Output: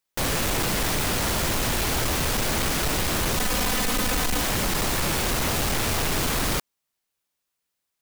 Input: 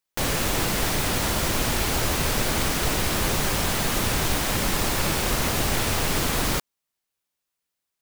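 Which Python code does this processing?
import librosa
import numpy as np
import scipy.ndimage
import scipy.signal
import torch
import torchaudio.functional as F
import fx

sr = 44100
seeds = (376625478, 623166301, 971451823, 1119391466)

y = fx.comb(x, sr, ms=4.0, depth=0.72, at=(3.37, 4.42))
y = np.clip(y, -10.0 ** (-23.0 / 20.0), 10.0 ** (-23.0 / 20.0))
y = y * 10.0 ** (2.0 / 20.0)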